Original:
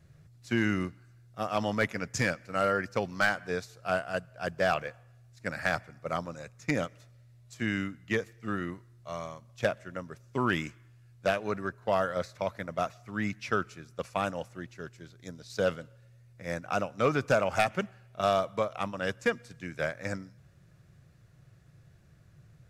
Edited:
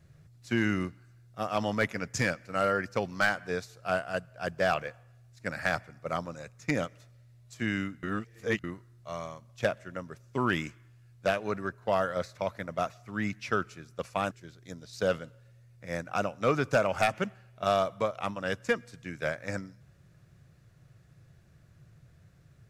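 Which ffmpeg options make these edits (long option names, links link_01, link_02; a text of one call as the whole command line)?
ffmpeg -i in.wav -filter_complex "[0:a]asplit=4[link_01][link_02][link_03][link_04];[link_01]atrim=end=8.032[link_05];[link_02]atrim=start=8.028:end=8.642,asetpts=PTS-STARTPTS,areverse[link_06];[link_03]atrim=start=8.638:end=14.312[link_07];[link_04]atrim=start=14.878[link_08];[link_05][link_06]acrossfade=duration=0.004:curve1=hsin:curve2=hsin[link_09];[link_09][link_07]acrossfade=duration=0.004:curve1=hsin:curve2=hsin[link_10];[link_10][link_08]acrossfade=duration=0.004:curve1=hsin:curve2=hsin" out.wav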